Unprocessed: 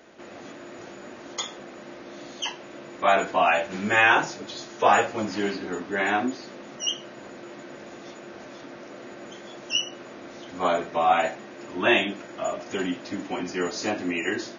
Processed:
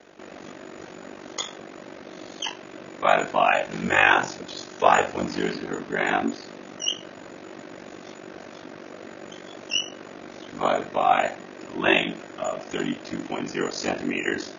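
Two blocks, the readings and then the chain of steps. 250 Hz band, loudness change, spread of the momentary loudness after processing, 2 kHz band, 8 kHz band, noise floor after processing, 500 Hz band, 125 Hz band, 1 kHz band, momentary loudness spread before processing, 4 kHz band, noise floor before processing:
+0.5 dB, +0.5 dB, 21 LU, +0.5 dB, no reading, -43 dBFS, +0.5 dB, +1.5 dB, +0.5 dB, 21 LU, +0.5 dB, -43 dBFS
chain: ring modulator 24 Hz; trim +3.5 dB

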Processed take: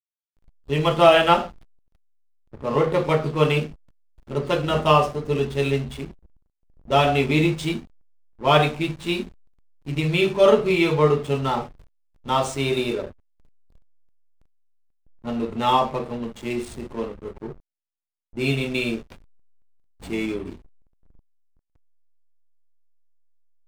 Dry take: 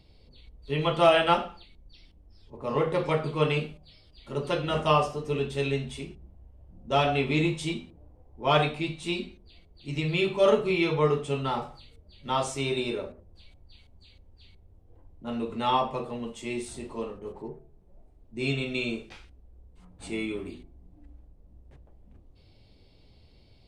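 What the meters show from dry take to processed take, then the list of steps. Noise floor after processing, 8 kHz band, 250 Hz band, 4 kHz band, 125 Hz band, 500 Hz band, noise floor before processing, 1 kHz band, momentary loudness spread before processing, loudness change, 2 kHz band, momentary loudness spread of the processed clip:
-80 dBFS, +4.0 dB, +6.0 dB, +5.0 dB, +6.0 dB, +6.0 dB, -57 dBFS, +6.0 dB, 17 LU, +6.0 dB, +5.0 dB, 19 LU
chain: hysteresis with a dead band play -37 dBFS; trim +6 dB

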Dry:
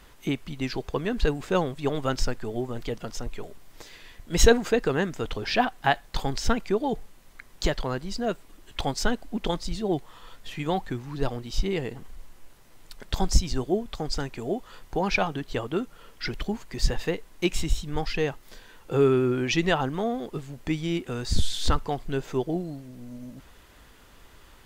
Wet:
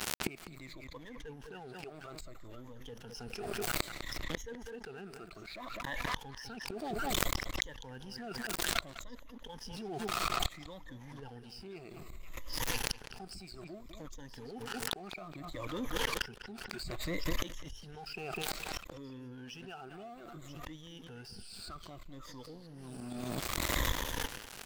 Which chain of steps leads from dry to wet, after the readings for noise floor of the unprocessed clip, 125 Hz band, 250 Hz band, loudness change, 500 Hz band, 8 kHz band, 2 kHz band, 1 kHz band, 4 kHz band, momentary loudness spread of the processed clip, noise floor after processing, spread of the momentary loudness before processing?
-52 dBFS, -14.5 dB, -15.0 dB, -11.5 dB, -16.5 dB, -5.5 dB, -7.5 dB, -10.5 dB, -6.0 dB, 16 LU, -52 dBFS, 14 LU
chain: drifting ripple filter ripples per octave 1.1, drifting -0.61 Hz, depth 22 dB; reverse; compression 5:1, threshold -28 dBFS, peak gain reduction 22 dB; reverse; crossover distortion -58 dBFS; on a send: repeats whose band climbs or falls 490 ms, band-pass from 1.6 kHz, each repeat 1.4 oct, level -8 dB; on the sum: crossover distortion -46.5 dBFS; inverted gate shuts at -34 dBFS, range -34 dB; filtered feedback delay 202 ms, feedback 17%, low-pass 4.2 kHz, level -15.5 dB; swell ahead of each attack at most 22 dB/s; trim +16.5 dB

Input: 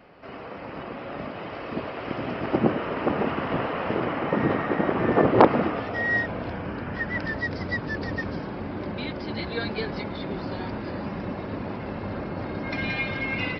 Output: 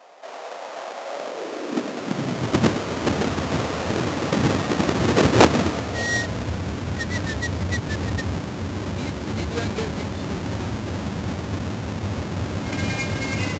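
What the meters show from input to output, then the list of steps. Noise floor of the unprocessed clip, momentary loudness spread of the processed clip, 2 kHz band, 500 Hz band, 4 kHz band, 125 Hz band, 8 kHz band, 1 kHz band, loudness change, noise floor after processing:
-37 dBFS, 10 LU, +0.5 dB, +1.0 dB, +8.5 dB, +7.5 dB, no reading, +0.5 dB, +2.5 dB, -35 dBFS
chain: square wave that keeps the level; resampled via 16 kHz; high-pass sweep 670 Hz -> 80 Hz, 1.06–2.72 s; trim -2.5 dB

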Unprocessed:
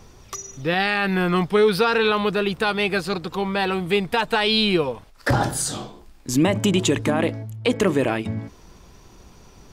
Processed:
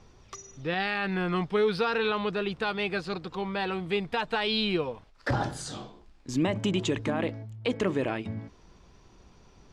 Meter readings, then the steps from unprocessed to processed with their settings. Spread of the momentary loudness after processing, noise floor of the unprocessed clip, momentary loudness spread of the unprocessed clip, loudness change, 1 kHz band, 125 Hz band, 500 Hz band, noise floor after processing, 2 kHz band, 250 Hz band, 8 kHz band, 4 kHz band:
12 LU, -49 dBFS, 12 LU, -8.0 dB, -8.0 dB, -8.0 dB, -8.0 dB, -57 dBFS, -8.0 dB, -8.0 dB, -14.5 dB, -8.5 dB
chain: low-pass 5.6 kHz 12 dB/octave; trim -8 dB

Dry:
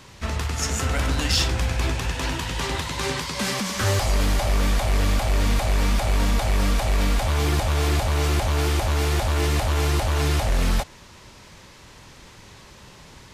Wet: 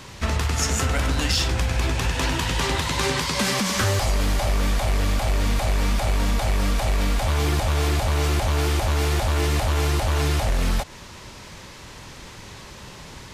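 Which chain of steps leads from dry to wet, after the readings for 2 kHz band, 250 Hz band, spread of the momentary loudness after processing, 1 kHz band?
+1.0 dB, +0.5 dB, 19 LU, +1.0 dB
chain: compression, threshold -24 dBFS, peak gain reduction 7 dB; trim +5.5 dB

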